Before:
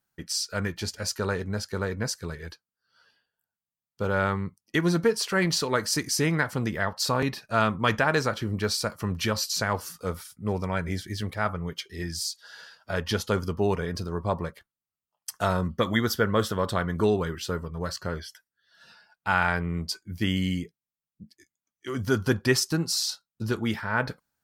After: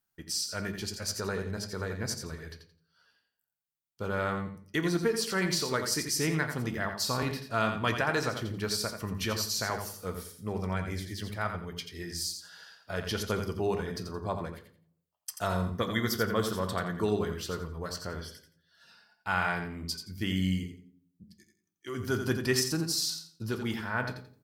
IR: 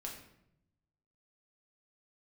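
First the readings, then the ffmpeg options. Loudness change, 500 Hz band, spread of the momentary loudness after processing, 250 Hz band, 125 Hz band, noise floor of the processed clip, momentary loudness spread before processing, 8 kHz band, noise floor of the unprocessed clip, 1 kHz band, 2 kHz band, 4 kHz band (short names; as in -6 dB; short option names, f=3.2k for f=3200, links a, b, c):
-4.5 dB, -5.0 dB, 11 LU, -4.5 dB, -5.0 dB, -81 dBFS, 11 LU, -2.5 dB, under -85 dBFS, -5.0 dB, -5.0 dB, -3.5 dB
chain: -filter_complex "[0:a]highshelf=f=6.2k:g=9.5,aecho=1:1:86|172|258:0.422|0.097|0.0223,asplit=2[a][b];[1:a]atrim=start_sample=2205,asetrate=79380,aresample=44100,lowpass=6.4k[c];[b][c]afir=irnorm=-1:irlink=0,volume=2dB[d];[a][d]amix=inputs=2:normalize=0,volume=-9dB"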